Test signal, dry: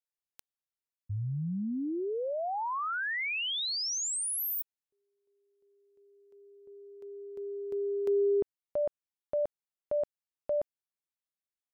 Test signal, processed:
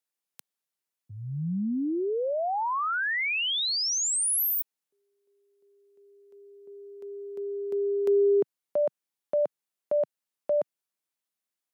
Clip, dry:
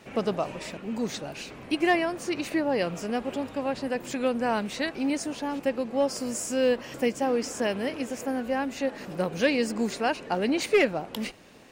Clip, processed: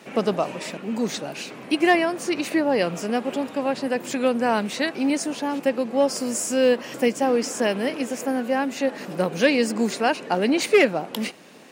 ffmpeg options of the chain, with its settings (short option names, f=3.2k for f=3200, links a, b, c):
-af "highpass=f=150:w=0.5412,highpass=f=150:w=1.3066,equalizer=f=11k:t=o:w=0.77:g=2.5,volume=5dB"